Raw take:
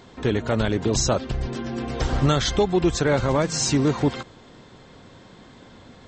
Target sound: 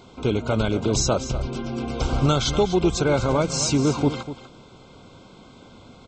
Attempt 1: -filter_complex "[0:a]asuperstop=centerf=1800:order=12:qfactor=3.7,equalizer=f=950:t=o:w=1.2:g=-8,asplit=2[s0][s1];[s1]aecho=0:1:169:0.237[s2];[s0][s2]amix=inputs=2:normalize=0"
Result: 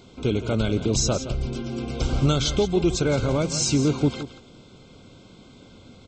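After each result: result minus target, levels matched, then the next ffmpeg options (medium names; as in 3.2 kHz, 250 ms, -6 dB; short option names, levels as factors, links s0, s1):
echo 76 ms early; 1 kHz band -5.5 dB
-filter_complex "[0:a]asuperstop=centerf=1800:order=12:qfactor=3.7,equalizer=f=950:t=o:w=1.2:g=-8,asplit=2[s0][s1];[s1]aecho=0:1:245:0.237[s2];[s0][s2]amix=inputs=2:normalize=0"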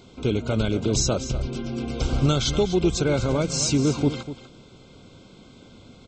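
1 kHz band -5.0 dB
-filter_complex "[0:a]asuperstop=centerf=1800:order=12:qfactor=3.7,asplit=2[s0][s1];[s1]aecho=0:1:245:0.237[s2];[s0][s2]amix=inputs=2:normalize=0"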